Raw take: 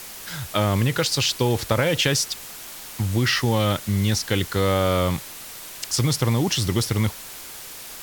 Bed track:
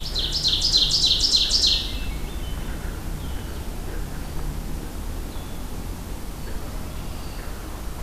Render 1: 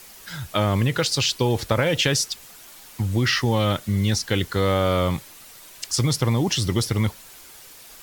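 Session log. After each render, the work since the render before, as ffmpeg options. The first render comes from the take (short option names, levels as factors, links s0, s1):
-af "afftdn=nr=8:nf=-38"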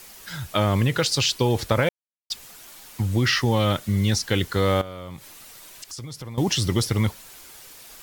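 -filter_complex "[0:a]asettb=1/sr,asplit=3[s0][s1][s2];[s0]atrim=end=4.814[s3];[s1]atrim=start=4.81:end=6.38,asetpts=PTS-STARTPTS,afade=t=in:d=0.004:c=qsin,afade=t=out:st=1.566:d=0.004:c=qsin,acompressor=threshold=0.0158:ratio=4:attack=3.2:release=140:knee=1:detection=peak[s4];[s2]atrim=start=6.376[s5];[s3][s4]acrossfade=d=0.004:c1=hsin:c2=qsin[s6];[s6][s5]acrossfade=d=0.004:c1=qsin:c2=hsin,asplit=3[s7][s8][s9];[s7]atrim=end=1.89,asetpts=PTS-STARTPTS,afade=t=out:st=1.886:d=0.004:c=hsin[s10];[s8]atrim=start=1.89:end=2.3,asetpts=PTS-STARTPTS,volume=0[s11];[s9]atrim=start=2.3,asetpts=PTS-STARTPTS,afade=t=in:d=0.004:c=hsin[s12];[s10][s11][s12]concat=n=3:v=0:a=1"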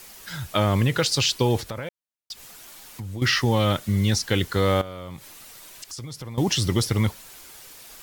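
-filter_complex "[0:a]asettb=1/sr,asplit=3[s0][s1][s2];[s0]atrim=end=1.614[s3];[s1]atrim=start=1.61:end=3.22,asetpts=PTS-STARTPTS,afade=t=in:d=0.004:c=qsin,afade=t=out:st=1.606:d=0.004:c=qsin,acompressor=threshold=0.0178:ratio=2.5:attack=3.2:release=140:knee=1:detection=peak[s4];[s2]atrim=start=3.216[s5];[s3][s4]acrossfade=d=0.004:c1=hsin:c2=qsin[s6];[s6][s5]acrossfade=d=0.004:c1=qsin:c2=hsin"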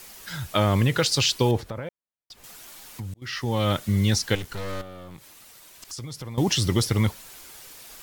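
-filter_complex "[0:a]asettb=1/sr,asplit=3[s0][s1][s2];[s0]atrim=end=1.514[s3];[s1]atrim=start=1.51:end=2.44,asetpts=PTS-STARTPTS,afade=t=in:d=0.004:c=qsin,afade=t=out:st=0.926:d=0.004:c=qsin,highshelf=f=2200:g=-11[s4];[s2]atrim=start=2.436[s5];[s3][s4]acrossfade=d=0.004:c1=hsin:c2=qsin[s6];[s6][s5]acrossfade=d=0.004:c1=qsin:c2=hsin,asettb=1/sr,asplit=3[s7][s8][s9];[s7]atrim=end=4.354[s10];[s8]atrim=start=4.35:end=5.85,asetpts=PTS-STARTPTS,afade=t=in:d=0.004:c=qsin,afade=t=out:st=1.496:d=0.004:c=qsin,aeval=exprs='(tanh(35.5*val(0)+0.75)-tanh(0.75))/35.5':c=same[s11];[s9]atrim=start=5.846[s12];[s10][s11]acrossfade=d=0.004:c1=hsin:c2=qsin[s13];[s13][s12]acrossfade=d=0.004:c1=qsin:c2=hsin,asplit=2[s14][s15];[s14]atrim=end=3.14,asetpts=PTS-STARTPTS,afade=t=out:st=3.136:d=0.004:c=hsin[s16];[s15]atrim=start=3.14,asetpts=PTS-STARTPTS,afade=t=in:d=0.65[s17];[s16][s17]concat=n=2:v=0:a=1"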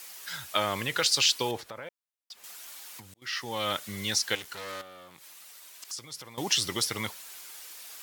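-af "highpass=f=1100:p=1"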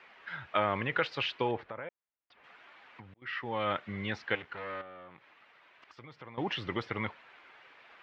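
-af "lowpass=f=2400:w=0.5412,lowpass=f=2400:w=1.3066"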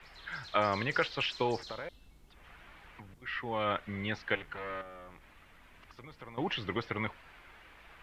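-filter_complex "[1:a]volume=0.0299[s0];[0:a][s0]amix=inputs=2:normalize=0"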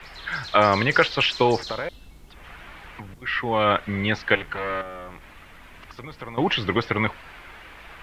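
-af "volume=3.98,alimiter=limit=0.891:level=0:latency=1"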